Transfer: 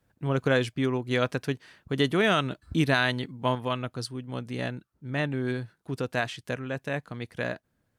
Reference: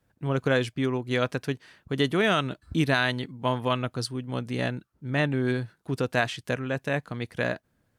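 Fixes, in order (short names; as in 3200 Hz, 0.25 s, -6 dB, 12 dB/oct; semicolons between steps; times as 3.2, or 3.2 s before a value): gain correction +3.5 dB, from 3.55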